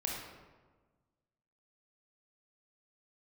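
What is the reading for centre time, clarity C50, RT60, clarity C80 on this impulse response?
68 ms, 0.5 dB, 1.4 s, 3.5 dB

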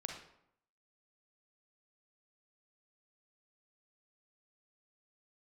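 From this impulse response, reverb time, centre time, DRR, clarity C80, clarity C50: 0.75 s, 33 ms, 1.5 dB, 8.0 dB, 3.5 dB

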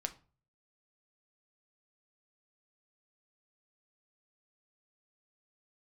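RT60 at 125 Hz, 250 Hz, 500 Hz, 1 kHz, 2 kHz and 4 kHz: 0.70 s, 0.45 s, 0.40 s, 0.35 s, 0.30 s, 0.25 s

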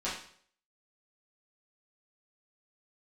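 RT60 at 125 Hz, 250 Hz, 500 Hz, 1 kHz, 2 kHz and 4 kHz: 0.60 s, 0.55 s, 0.60 s, 0.55 s, 0.55 s, 0.55 s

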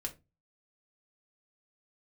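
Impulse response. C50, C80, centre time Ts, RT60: 16.5 dB, 24.0 dB, 8 ms, 0.25 s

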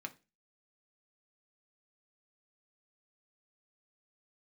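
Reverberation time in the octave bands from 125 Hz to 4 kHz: 0.35 s, 0.35 s, 0.30 s, 0.25 s, 0.30 s, 0.30 s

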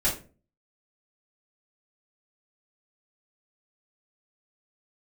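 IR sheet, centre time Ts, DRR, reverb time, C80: 25 ms, -9.0 dB, 0.35 s, 14.0 dB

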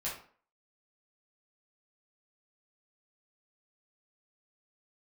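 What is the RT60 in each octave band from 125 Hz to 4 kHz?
0.40 s, 0.45 s, 0.45 s, 0.45 s, 0.40 s, 0.35 s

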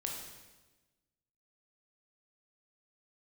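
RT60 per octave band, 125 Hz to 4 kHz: 1.4 s, 1.4 s, 1.3 s, 1.1 s, 1.1 s, 1.1 s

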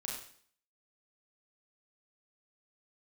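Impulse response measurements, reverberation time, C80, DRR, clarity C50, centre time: 0.55 s, 5.5 dB, -2.5 dB, 2.0 dB, 46 ms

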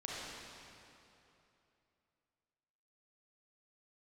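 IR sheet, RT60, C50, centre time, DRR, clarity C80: 2.9 s, -4.5 dB, 181 ms, -6.0 dB, -2.0 dB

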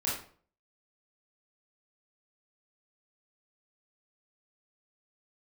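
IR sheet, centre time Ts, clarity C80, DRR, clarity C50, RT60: 43 ms, 8.5 dB, -7.0 dB, 3.5 dB, 0.45 s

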